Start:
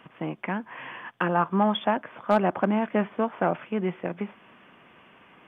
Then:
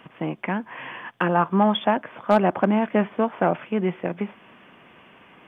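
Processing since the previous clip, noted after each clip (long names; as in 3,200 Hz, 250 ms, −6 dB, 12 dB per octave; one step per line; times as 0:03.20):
parametric band 1,300 Hz −2 dB
level +4 dB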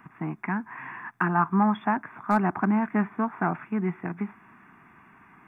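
phaser with its sweep stopped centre 1,300 Hz, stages 4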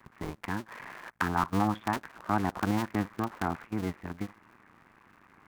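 sub-harmonics by changed cycles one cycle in 2, muted
level −2.5 dB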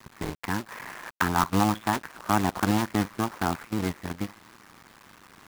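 log-companded quantiser 4 bits
level +4 dB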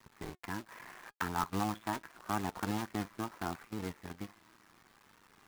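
flanger 0.77 Hz, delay 2.1 ms, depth 1.1 ms, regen +78%
level −6.5 dB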